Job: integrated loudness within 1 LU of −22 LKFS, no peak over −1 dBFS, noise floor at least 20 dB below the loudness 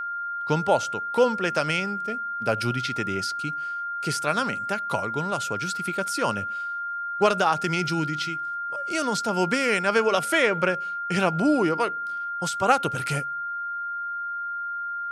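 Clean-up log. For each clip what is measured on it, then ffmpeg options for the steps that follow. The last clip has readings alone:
interfering tone 1,400 Hz; level of the tone −28 dBFS; integrated loudness −25.5 LKFS; sample peak −6.0 dBFS; target loudness −22.0 LKFS
→ -af "bandreject=frequency=1400:width=30"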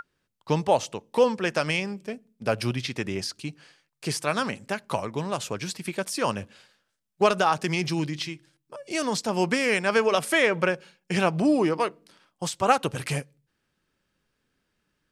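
interfering tone none found; integrated loudness −26.0 LKFS; sample peak −6.0 dBFS; target loudness −22.0 LKFS
→ -af "volume=4dB"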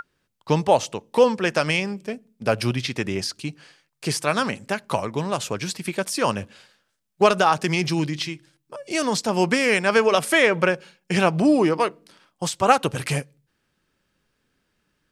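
integrated loudness −22.0 LKFS; sample peak −2.0 dBFS; background noise floor −74 dBFS

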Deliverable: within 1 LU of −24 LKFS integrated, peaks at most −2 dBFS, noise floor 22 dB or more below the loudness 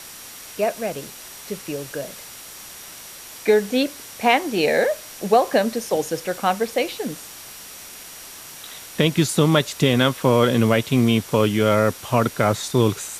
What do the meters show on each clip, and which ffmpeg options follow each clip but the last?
interfering tone 5,700 Hz; level of the tone −48 dBFS; background noise floor −40 dBFS; target noise floor −43 dBFS; integrated loudness −20.5 LKFS; sample peak −4.0 dBFS; target loudness −24.0 LKFS
→ -af "bandreject=frequency=5700:width=30"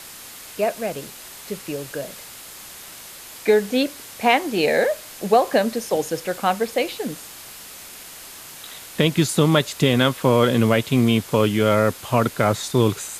interfering tone none found; background noise floor −40 dBFS; target noise floor −43 dBFS
→ -af "afftdn=noise_reduction=6:noise_floor=-40"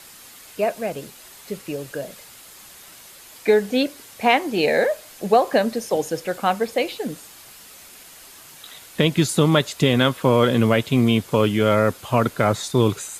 background noise floor −45 dBFS; integrated loudness −20.5 LKFS; sample peak −4.0 dBFS; target loudness −24.0 LKFS
→ -af "volume=-3.5dB"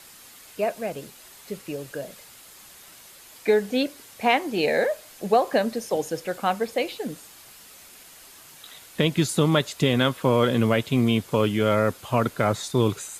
integrated loudness −24.0 LKFS; sample peak −7.5 dBFS; background noise floor −48 dBFS

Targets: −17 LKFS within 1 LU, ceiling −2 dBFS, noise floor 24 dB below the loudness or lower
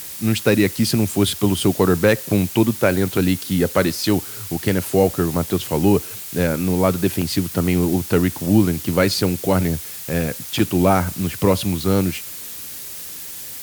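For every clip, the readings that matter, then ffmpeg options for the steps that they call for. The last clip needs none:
background noise floor −33 dBFS; target noise floor −44 dBFS; integrated loudness −19.5 LKFS; sample peak −1.5 dBFS; target loudness −17.0 LKFS
→ -af "afftdn=noise_reduction=11:noise_floor=-33"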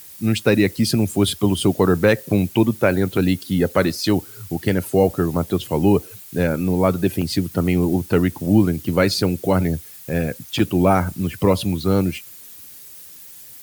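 background noise floor −41 dBFS; target noise floor −44 dBFS
→ -af "afftdn=noise_reduction=6:noise_floor=-41"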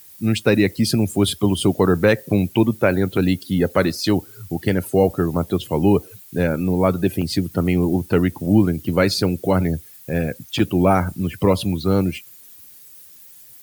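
background noise floor −45 dBFS; integrated loudness −19.5 LKFS; sample peak −2.5 dBFS; target loudness −17.0 LKFS
→ -af "volume=2.5dB,alimiter=limit=-2dB:level=0:latency=1"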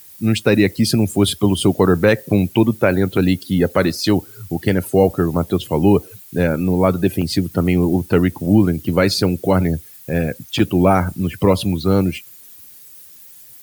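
integrated loudness −17.5 LKFS; sample peak −2.0 dBFS; background noise floor −42 dBFS

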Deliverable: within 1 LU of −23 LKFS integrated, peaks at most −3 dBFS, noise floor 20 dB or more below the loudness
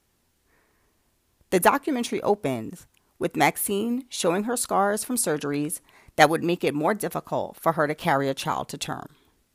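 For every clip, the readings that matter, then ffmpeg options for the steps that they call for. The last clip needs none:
integrated loudness −25.0 LKFS; sample peak −2.0 dBFS; target loudness −23.0 LKFS
→ -af "volume=2dB,alimiter=limit=-3dB:level=0:latency=1"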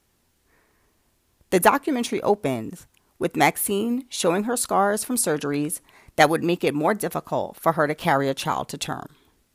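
integrated loudness −23.0 LKFS; sample peak −3.0 dBFS; background noise floor −67 dBFS

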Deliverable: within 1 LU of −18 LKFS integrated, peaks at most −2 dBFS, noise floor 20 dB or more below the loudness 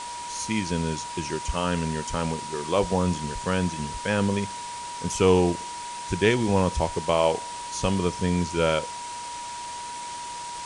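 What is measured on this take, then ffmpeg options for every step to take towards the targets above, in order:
interfering tone 960 Hz; level of the tone −34 dBFS; background noise floor −36 dBFS; target noise floor −47 dBFS; integrated loudness −26.5 LKFS; sample peak −7.5 dBFS; target loudness −18.0 LKFS
→ -af "bandreject=frequency=960:width=30"
-af "afftdn=noise_reduction=11:noise_floor=-36"
-af "volume=8.5dB,alimiter=limit=-2dB:level=0:latency=1"

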